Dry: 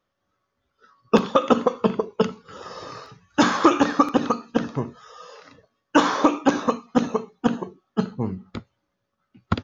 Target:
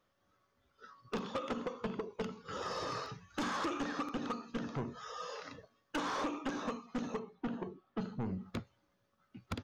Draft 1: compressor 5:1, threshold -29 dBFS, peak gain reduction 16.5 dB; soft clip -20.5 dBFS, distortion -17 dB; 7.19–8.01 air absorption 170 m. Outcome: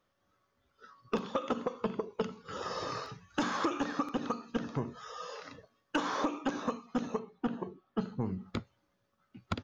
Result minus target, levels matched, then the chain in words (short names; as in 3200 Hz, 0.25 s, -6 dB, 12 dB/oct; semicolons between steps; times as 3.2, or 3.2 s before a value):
soft clip: distortion -11 dB
compressor 5:1, threshold -29 dBFS, peak gain reduction 16.5 dB; soft clip -31.5 dBFS, distortion -6 dB; 7.19–8.01 air absorption 170 m